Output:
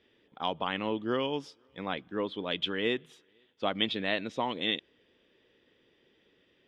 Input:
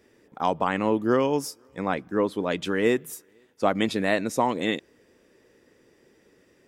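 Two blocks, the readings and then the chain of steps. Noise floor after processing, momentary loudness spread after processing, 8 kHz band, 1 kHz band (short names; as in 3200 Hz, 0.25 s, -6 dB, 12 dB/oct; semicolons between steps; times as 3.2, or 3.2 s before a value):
-69 dBFS, 7 LU, under -20 dB, -8.5 dB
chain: synth low-pass 3300 Hz, resonance Q 6.1; gain -9 dB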